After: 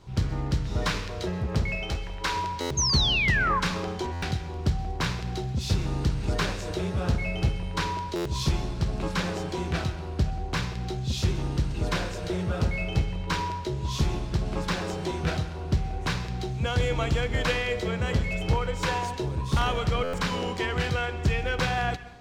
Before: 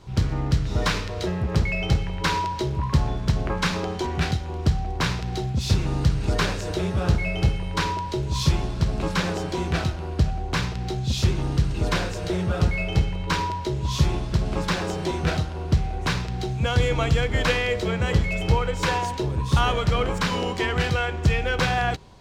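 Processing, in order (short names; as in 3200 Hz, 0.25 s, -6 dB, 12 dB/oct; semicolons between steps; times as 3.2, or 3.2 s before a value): one-sided fold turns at -12.5 dBFS; 1.75–2.36 bell 140 Hz -12 dB 1.6 oct; 2.77–3.6 painted sound fall 1000–6600 Hz -21 dBFS; plate-style reverb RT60 0.78 s, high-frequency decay 0.85×, pre-delay 0.115 s, DRR 15 dB; stuck buffer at 2.6/4.12/8.15/20.03, samples 512, times 8; gain -4 dB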